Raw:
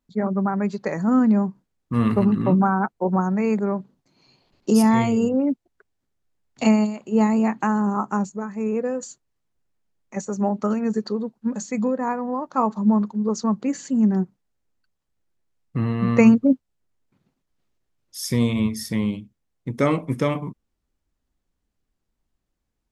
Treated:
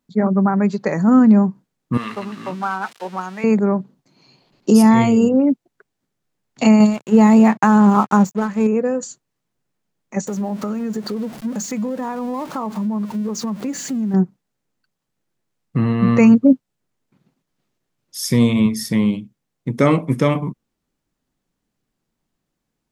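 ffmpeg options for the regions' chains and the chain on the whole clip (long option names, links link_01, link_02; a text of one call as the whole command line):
ffmpeg -i in.wav -filter_complex "[0:a]asettb=1/sr,asplit=3[link_01][link_02][link_03];[link_01]atrim=end=1.974[link_04];[link_02]atrim=start=1.97:end=3.44,asetpts=PTS-STARTPTS,afade=type=in:duration=0.004:curve=qsin,afade=type=out:start_time=1.466:duration=0.004:curve=qsin,aeval=exprs='val(0)+0.5*0.0188*sgn(val(0))':channel_layout=same,bandpass=frequency=3300:width_type=q:width=0.59[link_05];[link_03]atrim=start=3.436[link_06];[link_04][link_05]acrossfade=duration=0.004:curve1=hsin:curve2=qsin[link_07];[link_07][link_06]acrossfade=duration=0.004:curve1=qsin:curve2=hsin,asettb=1/sr,asplit=3[link_08][link_09][link_10];[link_08]atrim=end=6.804[link_11];[link_09]atrim=start=6.8:end=8.67,asetpts=PTS-STARTPTS,afade=type=in:duration=0.004:curve=qsin,afade=type=out:start_time=1.866:duration=0.004:curve=qsin,equalizer=frequency=320:width=2.5:gain=-5,acontrast=31,aeval=exprs='sgn(val(0))*max(abs(val(0))-0.0112,0)':channel_layout=same[link_12];[link_10]atrim=start=8.666[link_13];[link_11][link_12]acrossfade=duration=0.004:curve1=hsin:curve2=qsin[link_14];[link_14][link_13]acrossfade=duration=0.004:curve1=qsin:curve2=hsin,asettb=1/sr,asplit=3[link_15][link_16][link_17];[link_15]atrim=end=10.274[link_18];[link_16]atrim=start=10.27:end=14.14,asetpts=PTS-STARTPTS,afade=type=in:duration=0.004:curve=qsin,afade=type=out:start_time=3.866:duration=0.004:curve=qsin,aeval=exprs='val(0)+0.5*0.0168*sgn(val(0))':channel_layout=same,acompressor=threshold=-27dB:ratio=5:attack=3.2:release=140:knee=1:detection=peak[link_19];[link_17]atrim=start=14.136[link_20];[link_18][link_19]acrossfade=duration=0.004:curve1=hsin:curve2=qsin[link_21];[link_21][link_20]acrossfade=duration=0.004:curve1=qsin:curve2=hsin,lowshelf=frequency=100:width_type=q:width=1.5:gain=-9.5,alimiter=level_in=7.5dB:limit=-1dB:release=50:level=0:latency=1,volume=-2.5dB" out.wav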